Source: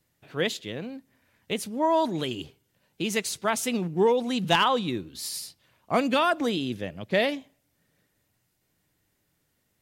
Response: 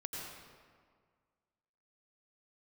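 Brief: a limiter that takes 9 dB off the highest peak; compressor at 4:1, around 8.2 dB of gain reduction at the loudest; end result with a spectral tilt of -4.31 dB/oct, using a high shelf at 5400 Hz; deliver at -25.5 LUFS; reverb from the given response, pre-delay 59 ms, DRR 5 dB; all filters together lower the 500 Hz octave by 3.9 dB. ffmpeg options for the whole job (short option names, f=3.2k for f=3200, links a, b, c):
-filter_complex "[0:a]equalizer=f=500:t=o:g=-5,highshelf=f=5.4k:g=8.5,acompressor=threshold=-27dB:ratio=4,alimiter=level_in=1dB:limit=-24dB:level=0:latency=1,volume=-1dB,asplit=2[a][b];[1:a]atrim=start_sample=2205,adelay=59[c];[b][c]afir=irnorm=-1:irlink=0,volume=-5dB[d];[a][d]amix=inputs=2:normalize=0,volume=8.5dB"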